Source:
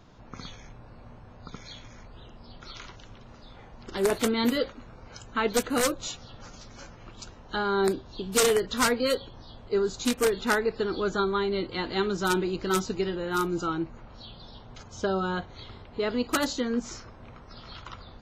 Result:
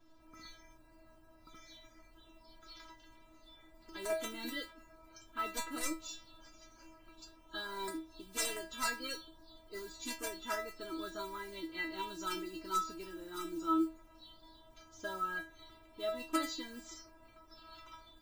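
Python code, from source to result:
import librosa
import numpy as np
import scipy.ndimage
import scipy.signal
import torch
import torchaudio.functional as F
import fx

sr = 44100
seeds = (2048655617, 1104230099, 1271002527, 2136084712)

y = fx.mod_noise(x, sr, seeds[0], snr_db=23)
y = fx.stiff_resonator(y, sr, f0_hz=320.0, decay_s=0.32, stiffness=0.002)
y = y * 10.0 ** (4.5 / 20.0)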